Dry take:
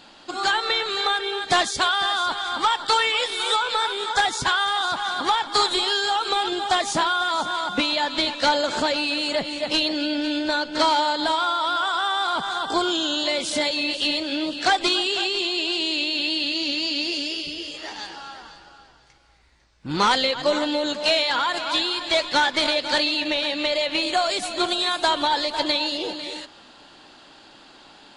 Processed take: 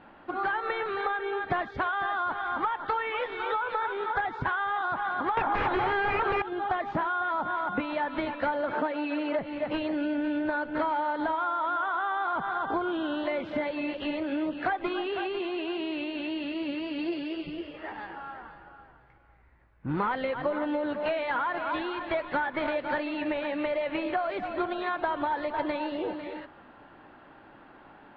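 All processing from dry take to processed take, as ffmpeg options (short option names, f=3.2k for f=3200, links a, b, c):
-filter_complex "[0:a]asettb=1/sr,asplit=3[a][b][c];[a]atrim=end=5.374[d];[b]atrim=start=5.37:end=6.42,asetpts=PTS-STARTPTS,afade=t=in:d=0.004:c=qsin,afade=t=out:st=1.046:d=0.004:c=qsin,lowpass=3.6k,equalizer=f=780:w=1.5:g=7,aeval=exprs='0.398*sin(PI/2*4.47*val(0)/0.398)':c=same[e];[c]atrim=start=6.416[f];[d][e]acrossfade=d=0.004:c1=hsin:c2=qsin[g];[g][f]acrossfade=d=0.004:c1=qsin:c2=hsin,asettb=1/sr,asplit=3[h][i][j];[h]atrim=end=8.744[k];[i]atrim=start=8.74:end=9.39,asetpts=PTS-STARTPTS,afade=t=in:d=0.004:c=qsin,afade=t=out:st=0.646:d=0.004:c=qsin,highpass=f=210:w=0.5412,highpass=f=210:w=1.3066,aecho=1:1:6.5:0.46,atrim=end_sample=28665,adynamicsmooth=sensitivity=5.5:basefreq=7.3k[l];[j]atrim=start=9.386[m];[k][l]acrossfade=d=0.004:c1=hsin:c2=qsin[n];[n][m]acrossfade=d=0.004:c1=qsin:c2=hsin,asettb=1/sr,asplit=3[o][p][q];[o]atrim=end=16.984[r];[p]atrim=start=16.98:end=17.61,asetpts=PTS-STARTPTS,afade=t=in:d=0.004:c=qsin,afade=t=out:st=0.626:d=0.004:c=qsin,lowpass=f=4.6k:t=q:w=3,aemphasis=mode=reproduction:type=75kf,aecho=1:1:5.9:0.65,atrim=end_sample=27783[s];[q]atrim=start=17.606[t];[r][s]acrossfade=d=0.004:c1=hsin:c2=qsin[u];[u][t]acrossfade=d=0.004:c1=qsin:c2=hsin,lowpass=f=2k:w=0.5412,lowpass=f=2k:w=1.3066,equalizer=f=100:w=1.2:g=4.5,acompressor=threshold=-24dB:ratio=6,volume=-1.5dB"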